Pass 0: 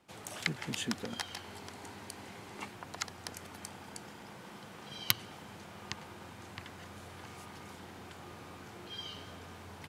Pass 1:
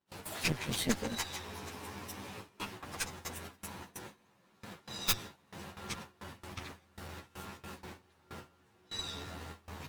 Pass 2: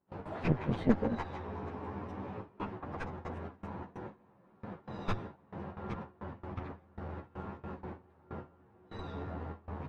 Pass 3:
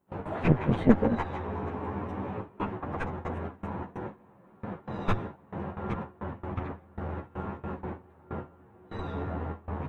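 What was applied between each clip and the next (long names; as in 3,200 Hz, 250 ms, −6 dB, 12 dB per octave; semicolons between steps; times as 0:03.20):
partials spread apart or drawn together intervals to 108%; noise gate with hold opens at −41 dBFS; harmonic generator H 5 −17 dB, 8 −11 dB, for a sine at −17 dBFS; level +1.5 dB
low-pass filter 1,000 Hz 12 dB per octave; level +6 dB
parametric band 4,900 Hz −10 dB 0.65 octaves; level +7 dB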